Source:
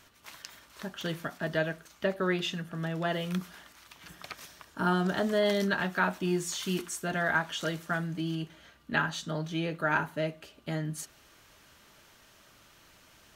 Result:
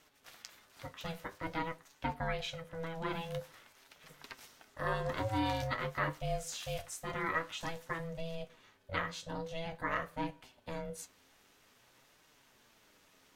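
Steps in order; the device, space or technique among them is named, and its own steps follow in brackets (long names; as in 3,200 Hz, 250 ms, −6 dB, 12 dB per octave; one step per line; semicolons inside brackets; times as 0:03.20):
alien voice (ring modulation 330 Hz; flanger 0.49 Hz, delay 6.3 ms, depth 5.3 ms, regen +57%)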